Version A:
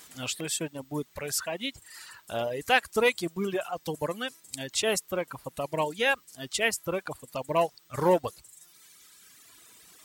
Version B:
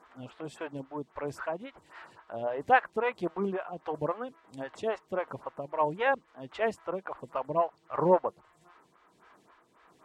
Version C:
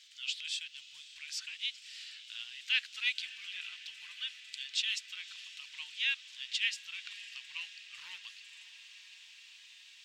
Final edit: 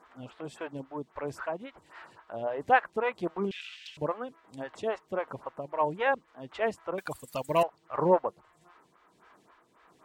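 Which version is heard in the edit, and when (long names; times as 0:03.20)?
B
0:03.51–0:03.97: punch in from C
0:06.98–0:07.63: punch in from A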